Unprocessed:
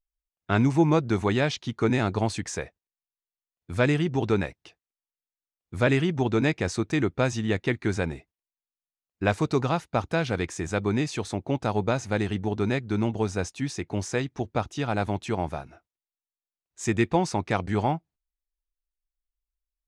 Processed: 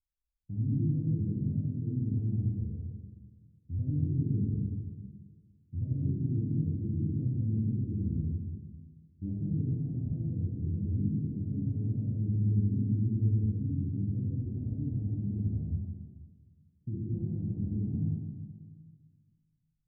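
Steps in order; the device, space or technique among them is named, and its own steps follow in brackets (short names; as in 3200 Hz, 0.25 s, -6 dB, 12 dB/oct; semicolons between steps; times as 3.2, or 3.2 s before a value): two-slope reverb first 0.69 s, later 1.8 s, DRR 0 dB; club heard from the street (limiter -19 dBFS, peak gain reduction 13 dB; LPF 210 Hz 24 dB/oct; reverb RT60 1.5 s, pre-delay 23 ms, DRR -5 dB); gain -4.5 dB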